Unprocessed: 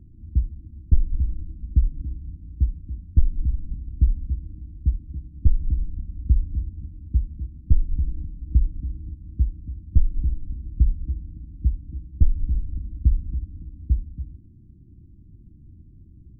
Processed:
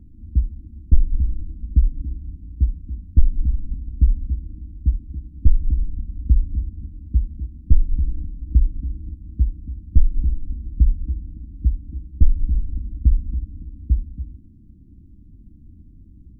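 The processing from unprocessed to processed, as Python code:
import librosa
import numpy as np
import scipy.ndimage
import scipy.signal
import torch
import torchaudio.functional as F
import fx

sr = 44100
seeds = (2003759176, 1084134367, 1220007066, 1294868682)

y = fx.tracing_dist(x, sr, depth_ms=0.092)
y = y + 0.43 * np.pad(y, (int(4.0 * sr / 1000.0), 0))[:len(y)]
y = y * 10.0 ** (2.0 / 20.0)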